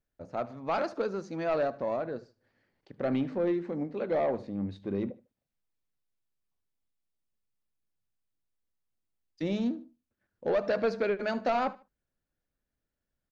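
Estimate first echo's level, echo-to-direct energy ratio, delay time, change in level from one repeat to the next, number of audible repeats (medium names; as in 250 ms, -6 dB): -20.0 dB, -19.5 dB, 75 ms, -11.0 dB, 2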